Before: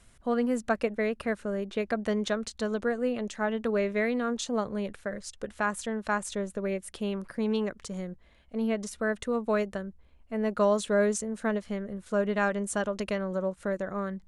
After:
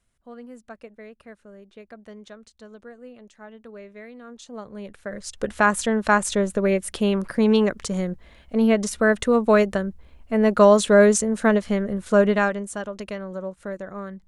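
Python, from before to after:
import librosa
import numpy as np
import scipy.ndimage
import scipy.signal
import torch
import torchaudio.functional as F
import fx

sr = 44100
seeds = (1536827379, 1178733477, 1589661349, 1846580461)

y = fx.gain(x, sr, db=fx.line((4.16, -14.0), (4.95, -2.0), (5.47, 10.5), (12.26, 10.5), (12.7, -1.5)))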